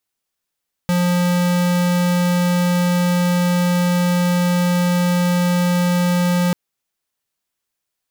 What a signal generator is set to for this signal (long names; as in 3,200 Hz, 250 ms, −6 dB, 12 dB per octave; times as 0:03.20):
tone square 177 Hz −16.5 dBFS 5.64 s